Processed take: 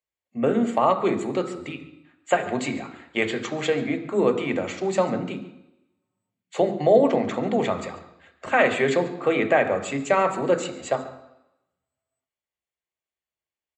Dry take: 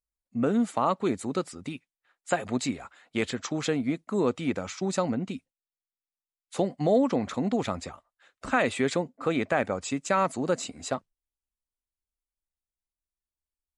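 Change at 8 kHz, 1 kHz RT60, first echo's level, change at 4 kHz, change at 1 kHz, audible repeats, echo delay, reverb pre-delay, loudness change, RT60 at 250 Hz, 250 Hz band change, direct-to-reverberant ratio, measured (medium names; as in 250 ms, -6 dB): -1.0 dB, 0.85 s, -18.5 dB, +2.5 dB, +5.5 dB, 1, 140 ms, 3 ms, +5.0 dB, 0.90 s, +2.0 dB, 6.0 dB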